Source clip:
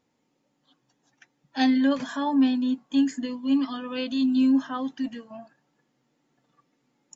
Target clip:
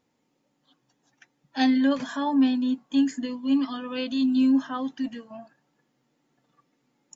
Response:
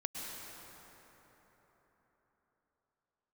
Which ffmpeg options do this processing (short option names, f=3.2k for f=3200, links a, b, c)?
-af "bandreject=f=7.8k:w=24"